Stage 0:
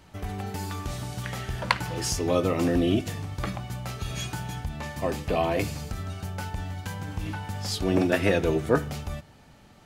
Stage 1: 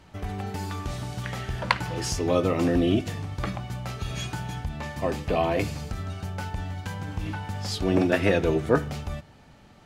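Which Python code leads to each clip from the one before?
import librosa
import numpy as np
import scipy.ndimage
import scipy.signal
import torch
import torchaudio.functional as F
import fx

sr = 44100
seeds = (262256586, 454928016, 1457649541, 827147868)

y = fx.high_shelf(x, sr, hz=8400.0, db=-9.0)
y = F.gain(torch.from_numpy(y), 1.0).numpy()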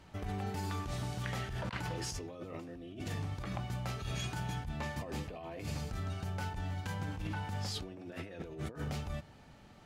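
y = fx.over_compress(x, sr, threshold_db=-32.0, ratio=-1.0)
y = F.gain(torch.from_numpy(y), -8.0).numpy()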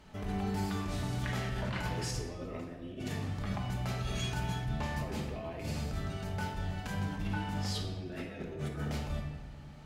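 y = fx.room_shoebox(x, sr, seeds[0], volume_m3=900.0, walls='mixed', distance_m=1.4)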